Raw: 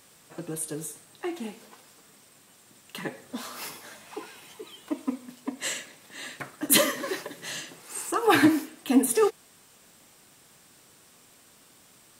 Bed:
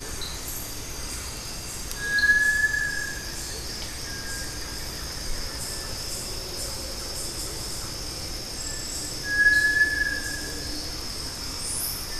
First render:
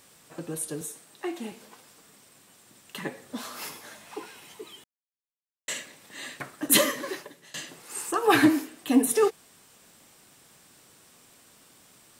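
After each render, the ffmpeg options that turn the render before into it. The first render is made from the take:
-filter_complex "[0:a]asettb=1/sr,asplit=3[s0][s1][s2];[s0]atrim=end=0.814[s3];[s1]atrim=start=0.81:end=1.52,asetpts=PTS-STARTPTS,afade=t=in:d=0.004:c=qsin,afade=t=out:st=0.706:d=0.004:c=qsin,highpass=170[s4];[s2]atrim=start=1.516[s5];[s3][s4]acrossfade=d=0.004:c1=hsin:c2=qsin[s6];[s6][s5]acrossfade=d=0.004:c1=qsin:c2=hsin,asplit=4[s7][s8][s9][s10];[s7]atrim=end=4.84,asetpts=PTS-STARTPTS,afade=t=out:st=4.836:d=0.004:c=hsin[s11];[s8]atrim=start=4.84:end=5.68,asetpts=PTS-STARTPTS,volume=0[s12];[s9]atrim=start=5.68:end=7.54,asetpts=PTS-STARTPTS,afade=t=in:d=0.004:c=hsin,afade=t=out:st=1.24:d=0.62:silence=0.0841395[s13];[s10]atrim=start=7.54,asetpts=PTS-STARTPTS,afade=t=in:d=0.004:c=hsin:silence=0.0841395[s14];[s11][s12][s13][s14]concat=n=4:v=0:a=1"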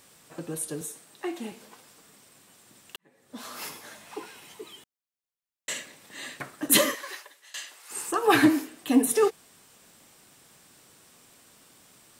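-filter_complex "[0:a]asettb=1/sr,asplit=3[s0][s1][s2];[s0]atrim=end=6.954[s3];[s1]atrim=start=6.95:end=7.91,asetpts=PTS-STARTPTS,afade=t=in:d=0.004:c=qsin,afade=t=out:st=0.956:d=0.004:c=qsin,highpass=930[s4];[s2]atrim=start=7.906[s5];[s3][s4]acrossfade=d=0.004:c1=hsin:c2=qsin[s6];[s6][s5]acrossfade=d=0.004:c1=qsin:c2=hsin,asplit=2[s7][s8];[s7]atrim=end=2.96,asetpts=PTS-STARTPTS,afade=t=out:st=2.956:d=0.004:c=hsin[s9];[s8]atrim=start=2.96,asetpts=PTS-STARTPTS,afade=t=in:d=0.56:c=qua[s10];[s9][s10]concat=n=2:v=0:a=1"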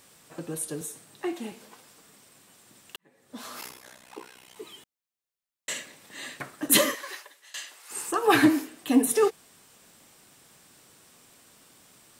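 -filter_complex "[0:a]asettb=1/sr,asplit=3[s0][s1][s2];[s0]atrim=end=0.924[s3];[s1]atrim=start=0.92:end=1.33,asetpts=PTS-STARTPTS,afade=t=in:d=0.004:c=qsin,afade=t=out:st=0.406:d=0.004:c=qsin,equalizer=f=66:w=0.55:g=14[s4];[s2]atrim=start=1.326[s5];[s3][s4]acrossfade=d=0.004:c1=hsin:c2=qsin[s6];[s6][s5]acrossfade=d=0.004:c1=qsin:c2=hsin,asettb=1/sr,asplit=3[s7][s8][s9];[s7]atrim=end=3.614[s10];[s8]atrim=start=3.61:end=4.56,asetpts=PTS-STARTPTS,afade=t=in:d=0.004:c=qsin,afade=t=out:st=0.946:d=0.004:c=qsin,tremolo=f=63:d=0.947[s11];[s9]atrim=start=4.556[s12];[s10][s11]acrossfade=d=0.004:c1=hsin:c2=qsin[s13];[s13][s12]acrossfade=d=0.004:c1=qsin:c2=hsin"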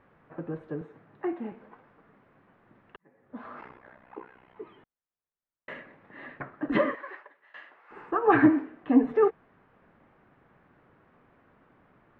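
-af "lowpass=f=1800:w=0.5412,lowpass=f=1800:w=1.3066,lowshelf=f=64:g=7.5"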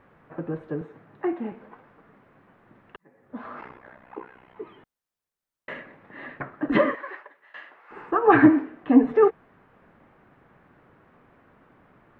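-af "volume=1.68"

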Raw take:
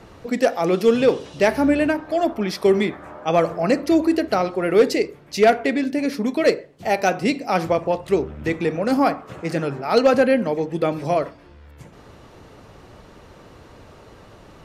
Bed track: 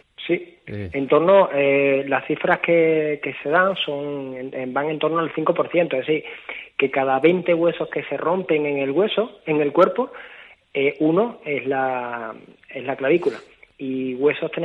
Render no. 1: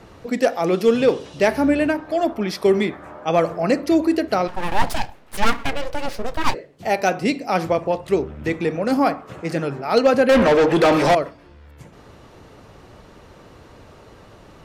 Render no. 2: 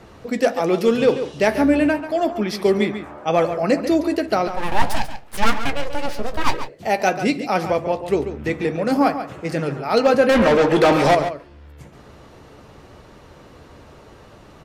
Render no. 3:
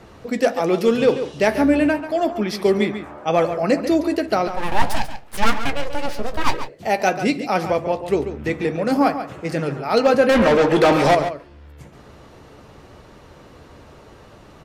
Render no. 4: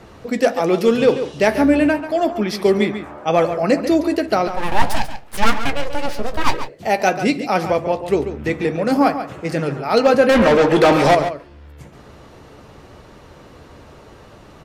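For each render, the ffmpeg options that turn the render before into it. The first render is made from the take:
-filter_complex "[0:a]asplit=3[s0][s1][s2];[s0]afade=t=out:st=4.47:d=0.02[s3];[s1]aeval=exprs='abs(val(0))':c=same,afade=t=in:st=4.47:d=0.02,afade=t=out:st=6.53:d=0.02[s4];[s2]afade=t=in:st=6.53:d=0.02[s5];[s3][s4][s5]amix=inputs=3:normalize=0,asettb=1/sr,asplit=3[s6][s7][s8];[s6]atrim=end=10.294[s9];[s7]atrim=start=10.29:end=11.15,asetpts=PTS-STARTPTS,afade=t=in:d=0.004:c=qsin,afade=t=out:st=0.856:d=0.004:c=qsin,asplit=2[s10][s11];[s11]highpass=f=720:p=1,volume=28.2,asoftclip=type=tanh:threshold=0.447[s12];[s10][s12]amix=inputs=2:normalize=0,lowpass=f=3700:p=1,volume=0.501[s13];[s8]atrim=start=11.146[s14];[s9][s13]acrossfade=d=0.004:c1=hsin:c2=qsin[s15];[s15][s14]acrossfade=d=0.004:c1=qsin:c2=hsin"
-filter_complex "[0:a]asplit=2[s0][s1];[s1]adelay=14,volume=0.251[s2];[s0][s2]amix=inputs=2:normalize=0,asplit=2[s3][s4];[s4]adelay=139.9,volume=0.316,highshelf=f=4000:g=-3.15[s5];[s3][s5]amix=inputs=2:normalize=0"
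-af anull
-af "volume=1.26"

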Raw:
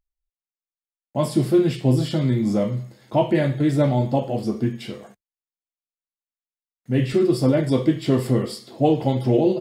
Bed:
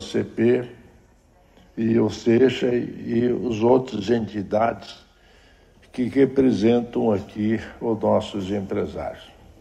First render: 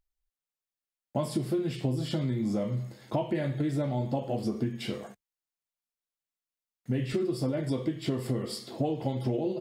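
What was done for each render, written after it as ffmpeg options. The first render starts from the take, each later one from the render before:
-af "acompressor=threshold=0.0501:ratio=10"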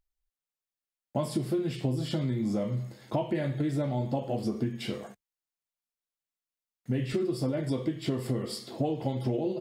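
-af anull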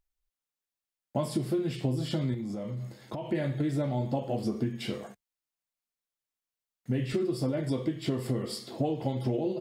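-filter_complex "[0:a]asettb=1/sr,asplit=3[s0][s1][s2];[s0]atrim=end=2.344[s3];[s1]atrim=start=2.34:end=3.32,asetpts=PTS-STARTPTS,afade=t=in:d=0.004:c=qsin,afade=t=out:st=0.976:d=0.004:c=qsin,acompressor=threshold=0.0251:ratio=6:attack=3.2:release=140:knee=1:detection=peak[s4];[s2]atrim=start=3.316[s5];[s3][s4]acrossfade=d=0.004:c1=hsin:c2=qsin[s6];[s6][s5]acrossfade=d=0.004:c1=qsin:c2=hsin"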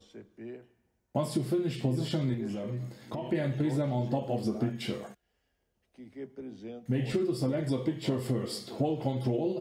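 -filter_complex "[1:a]volume=0.0562[s0];[0:a][s0]amix=inputs=2:normalize=0"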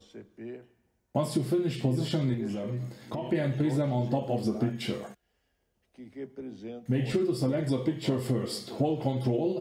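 -af "volume=1.26"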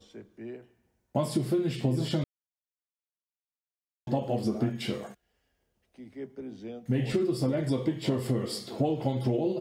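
-filter_complex "[0:a]asplit=3[s0][s1][s2];[s0]atrim=end=2.24,asetpts=PTS-STARTPTS,afade=t=out:st=2.236:d=0.004:c=hsin[s3];[s1]atrim=start=2.24:end=4.07,asetpts=PTS-STARTPTS,volume=0[s4];[s2]atrim=start=4.07,asetpts=PTS-STARTPTS,afade=t=in:d=0.004:c=hsin[s5];[s3][s4][s5]concat=n=3:v=0:a=1"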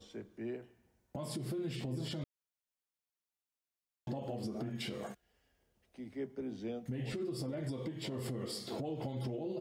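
-af "acompressor=threshold=0.0398:ratio=6,alimiter=level_in=2.24:limit=0.0631:level=0:latency=1:release=195,volume=0.447"

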